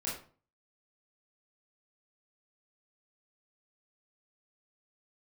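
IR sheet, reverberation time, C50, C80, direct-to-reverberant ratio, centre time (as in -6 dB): 0.40 s, 4.5 dB, 10.0 dB, -7.5 dB, 40 ms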